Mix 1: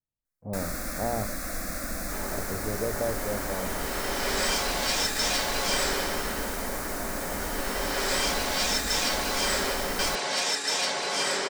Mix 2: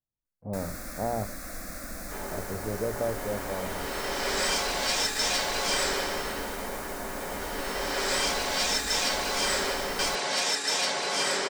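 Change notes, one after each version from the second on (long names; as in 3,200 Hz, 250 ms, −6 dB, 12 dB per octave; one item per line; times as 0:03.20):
first sound −5.5 dB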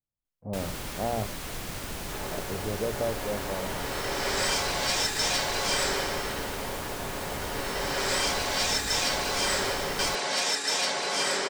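first sound: remove phaser with its sweep stopped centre 610 Hz, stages 8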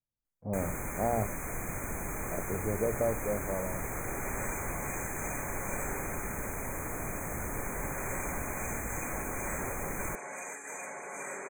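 second sound −11.0 dB
master: add linear-phase brick-wall band-stop 2,500–6,100 Hz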